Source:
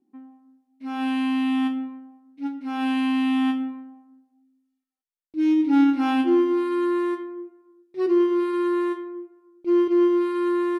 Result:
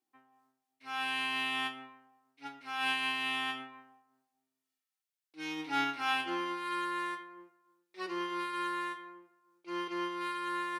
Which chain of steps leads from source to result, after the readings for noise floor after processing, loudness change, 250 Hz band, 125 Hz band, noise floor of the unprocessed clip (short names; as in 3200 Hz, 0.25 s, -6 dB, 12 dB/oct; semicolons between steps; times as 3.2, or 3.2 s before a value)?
under -85 dBFS, -12.0 dB, -22.5 dB, n/a, -78 dBFS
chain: octaver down 1 oct, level -3 dB; HPF 1300 Hz 12 dB/oct; noise-modulated level, depth 55%; gain +5 dB